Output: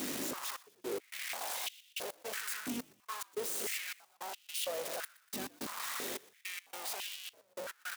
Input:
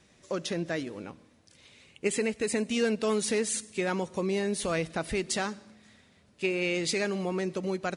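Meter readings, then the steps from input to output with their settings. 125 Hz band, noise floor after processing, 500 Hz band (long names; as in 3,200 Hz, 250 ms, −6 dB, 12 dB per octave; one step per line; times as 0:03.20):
−22.5 dB, −70 dBFS, −14.0 dB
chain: sign of each sample alone
mains hum 50 Hz, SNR 13 dB
high-shelf EQ 7,800 Hz +3.5 dB
wave folding −38.5 dBFS
gate pattern "xxxx..x." 107 BPM −60 dB
on a send: echo with shifted repeats 121 ms, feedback 44%, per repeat −85 Hz, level −21 dB
on the sum: high-pass on a step sequencer 3 Hz 280–2,900 Hz
level +6 dB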